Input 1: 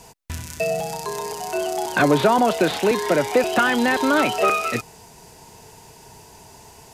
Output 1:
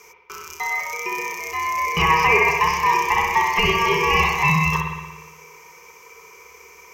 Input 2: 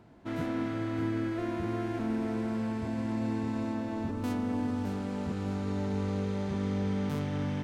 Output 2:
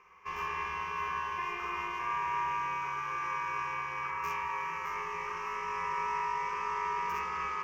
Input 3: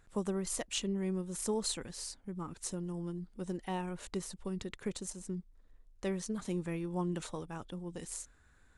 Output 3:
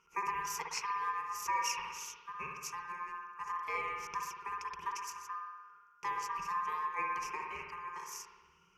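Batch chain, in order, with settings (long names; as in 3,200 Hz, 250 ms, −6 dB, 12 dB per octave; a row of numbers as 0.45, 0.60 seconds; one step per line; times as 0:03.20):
ring modulation 1,400 Hz
EQ curve with evenly spaced ripples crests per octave 0.78, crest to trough 18 dB
spring reverb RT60 1.2 s, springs 57 ms, chirp 75 ms, DRR 1.5 dB
level −3 dB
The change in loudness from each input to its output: +1.5, −1.5, 0.0 LU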